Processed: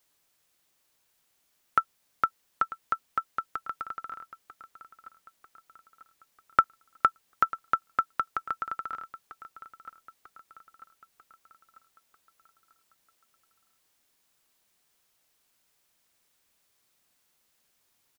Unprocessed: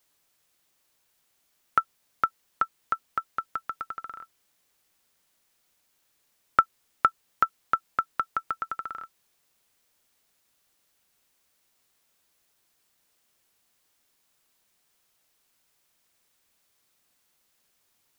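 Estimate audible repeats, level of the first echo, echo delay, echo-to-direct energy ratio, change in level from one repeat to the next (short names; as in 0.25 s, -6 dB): 4, -16.5 dB, 0.944 s, -15.0 dB, -6.0 dB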